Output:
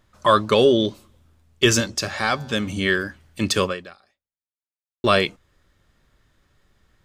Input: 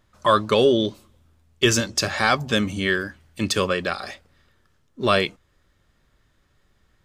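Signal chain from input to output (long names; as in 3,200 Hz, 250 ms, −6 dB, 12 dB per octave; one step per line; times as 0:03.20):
0:01.95–0:02.68: tuned comb filter 110 Hz, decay 1.8 s, mix 40%
0:03.64–0:05.04: fade out exponential
level +1.5 dB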